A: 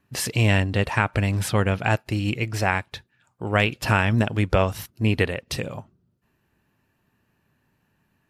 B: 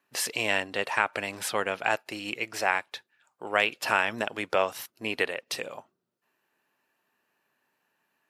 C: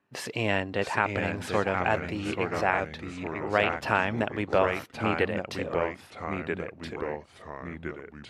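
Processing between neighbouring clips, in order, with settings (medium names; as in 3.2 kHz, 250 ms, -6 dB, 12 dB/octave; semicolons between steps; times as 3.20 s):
high-pass 480 Hz 12 dB/octave; trim -2 dB
ever faster or slower copies 649 ms, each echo -2 st, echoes 3, each echo -6 dB; RIAA curve playback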